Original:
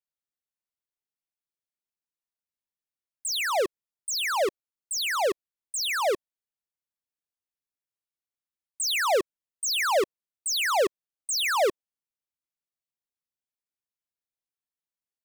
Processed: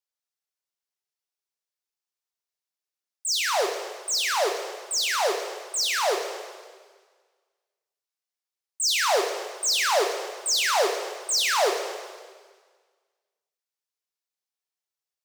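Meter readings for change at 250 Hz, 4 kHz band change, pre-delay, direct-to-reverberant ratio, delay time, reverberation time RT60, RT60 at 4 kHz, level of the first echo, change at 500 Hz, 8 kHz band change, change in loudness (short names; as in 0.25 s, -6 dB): -1.5 dB, +4.0 dB, 3 ms, 3.0 dB, none, 1.6 s, 1.6 s, none, +0.5 dB, +4.5 dB, +2.0 dB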